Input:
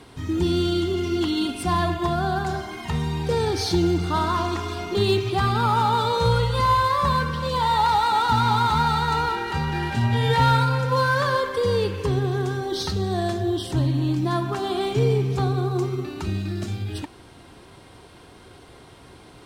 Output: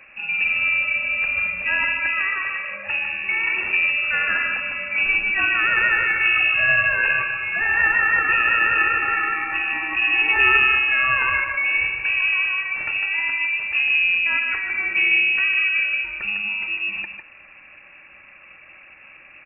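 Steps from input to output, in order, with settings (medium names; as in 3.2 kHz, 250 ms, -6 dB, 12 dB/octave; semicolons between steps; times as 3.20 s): tracing distortion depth 0.19 ms; echo from a far wall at 26 m, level -6 dB; frequency inversion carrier 2.7 kHz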